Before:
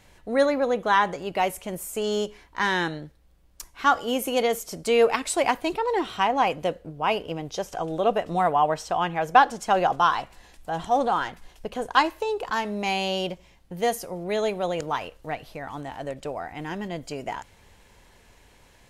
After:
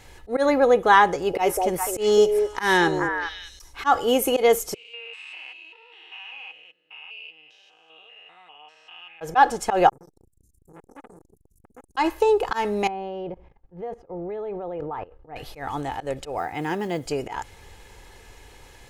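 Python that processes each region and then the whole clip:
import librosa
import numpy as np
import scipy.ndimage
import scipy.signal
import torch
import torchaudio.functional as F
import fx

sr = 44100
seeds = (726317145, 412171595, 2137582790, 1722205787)

y = fx.chain(x, sr, fx.peak_eq(hz=5600.0, db=8.5, octaves=0.27),
    fx.echo_stepped(ms=205, hz=490.0, octaves=1.4, feedback_pct=70, wet_db=-2.5), at=(1.08, 3.73))
y = fx.chain(y, sr, fx.spec_steps(hold_ms=200),
    fx.bandpass_q(hz=2700.0, q=14.0),
    fx.comb(ms=6.4, depth=0.43), at=(4.74, 9.21))
y = fx.chain(y, sr, fx.cheby2_bandstop(low_hz=650.0, high_hz=3200.0, order=4, stop_db=60),
    fx.bass_treble(bass_db=-9, treble_db=-5),
    fx.transformer_sat(knee_hz=1300.0), at=(9.89, 11.97))
y = fx.chain(y, sr, fx.lowpass(hz=1100.0, slope=12),
    fx.level_steps(step_db=19), at=(12.87, 15.36))
y = fx.chain(y, sr, fx.block_float(bits=7),
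    fx.highpass(hz=91.0, slope=24), at=(16.38, 17.06))
y = fx.auto_swell(y, sr, attack_ms=114.0)
y = fx.dynamic_eq(y, sr, hz=3800.0, q=0.73, threshold_db=-44.0, ratio=4.0, max_db=-4)
y = y + 0.42 * np.pad(y, (int(2.4 * sr / 1000.0), 0))[:len(y)]
y = y * 10.0 ** (6.0 / 20.0)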